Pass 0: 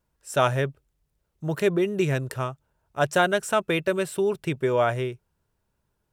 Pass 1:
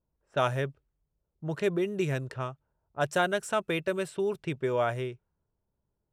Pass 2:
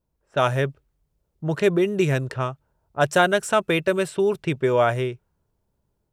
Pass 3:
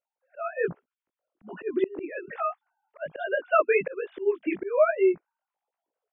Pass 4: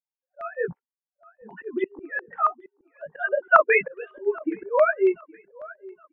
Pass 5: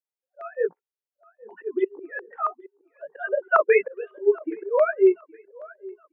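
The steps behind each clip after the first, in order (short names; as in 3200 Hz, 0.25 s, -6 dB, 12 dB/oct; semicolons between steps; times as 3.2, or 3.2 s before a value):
low-pass opened by the level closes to 810 Hz, open at -21.5 dBFS; gain -5.5 dB
AGC gain up to 4 dB; gain +4.5 dB
sine-wave speech; chorus 1.2 Hz, delay 16 ms, depth 4.7 ms; auto swell 0.404 s; gain +6.5 dB
per-bin expansion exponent 1.5; feedback echo 0.818 s, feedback 38%, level -23 dB; stepped low-pass 7.3 Hz 800–2300 Hz; gain +1.5 dB
ladder high-pass 360 Hz, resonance 60%; gain +5.5 dB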